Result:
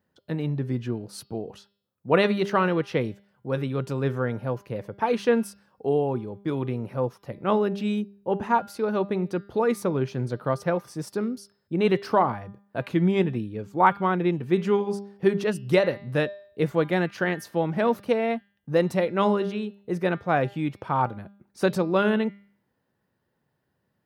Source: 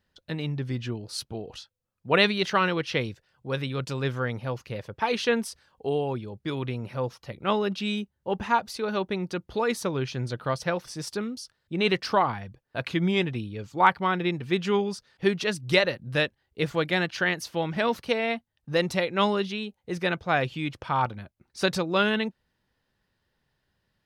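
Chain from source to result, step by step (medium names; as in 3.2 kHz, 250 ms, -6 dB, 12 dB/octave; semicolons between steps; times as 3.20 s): high-pass 130 Hz; peaking EQ 4.1 kHz -14 dB 2.7 oct; de-hum 200.5 Hz, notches 27; trim +5 dB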